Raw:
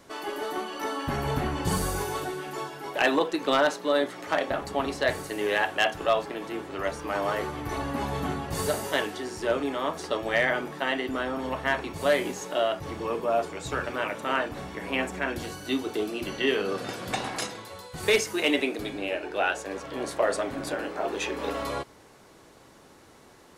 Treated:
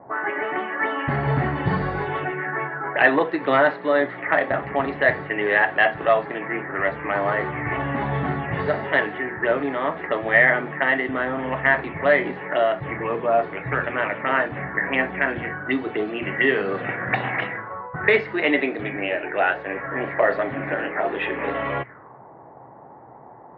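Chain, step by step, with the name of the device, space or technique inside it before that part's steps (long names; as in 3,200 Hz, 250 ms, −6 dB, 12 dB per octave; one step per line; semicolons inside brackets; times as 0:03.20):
envelope filter bass rig (envelope-controlled low-pass 780–4,300 Hz up, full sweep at −25.5 dBFS; loudspeaker in its box 72–2,100 Hz, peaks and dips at 83 Hz −5 dB, 130 Hz +10 dB, 690 Hz +3 dB, 1,900 Hz +9 dB)
level +3.5 dB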